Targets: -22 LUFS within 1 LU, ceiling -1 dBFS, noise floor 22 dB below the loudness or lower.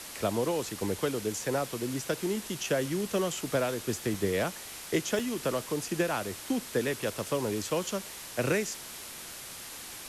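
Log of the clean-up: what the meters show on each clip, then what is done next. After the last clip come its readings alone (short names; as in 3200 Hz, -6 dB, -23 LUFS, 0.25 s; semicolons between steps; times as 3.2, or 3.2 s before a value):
dropouts 2; longest dropout 2.8 ms; noise floor -44 dBFS; noise floor target -54 dBFS; loudness -32.0 LUFS; peak -15.5 dBFS; loudness target -22.0 LUFS
-> interpolate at 4.14/5.19, 2.8 ms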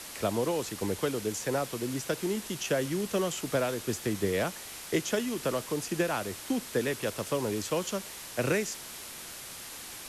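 dropouts 0; noise floor -44 dBFS; noise floor target -54 dBFS
-> denoiser 10 dB, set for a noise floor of -44 dBFS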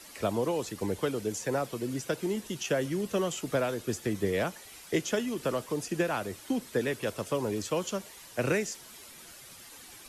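noise floor -50 dBFS; noise floor target -54 dBFS
-> denoiser 6 dB, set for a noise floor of -50 dBFS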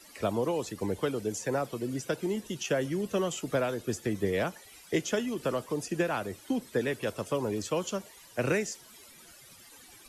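noise floor -54 dBFS; loudness -32.0 LUFS; peak -16.0 dBFS; loudness target -22.0 LUFS
-> gain +10 dB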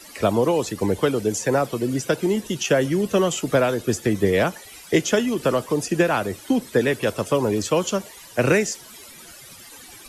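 loudness -22.0 LUFS; peak -6.0 dBFS; noise floor -44 dBFS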